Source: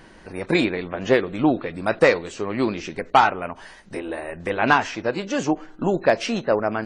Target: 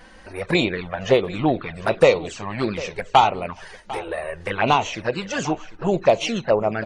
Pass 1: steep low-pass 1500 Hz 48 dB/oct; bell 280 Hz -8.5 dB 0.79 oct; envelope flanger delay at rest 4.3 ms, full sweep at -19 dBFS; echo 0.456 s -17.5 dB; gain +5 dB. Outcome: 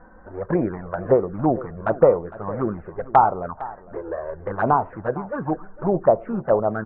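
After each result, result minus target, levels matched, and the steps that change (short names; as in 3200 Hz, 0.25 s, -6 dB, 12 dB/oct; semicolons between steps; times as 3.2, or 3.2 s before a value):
2000 Hz band -8.0 dB; echo 0.293 s early
remove: steep low-pass 1500 Hz 48 dB/oct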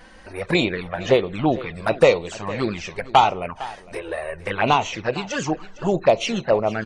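echo 0.293 s early
change: echo 0.749 s -17.5 dB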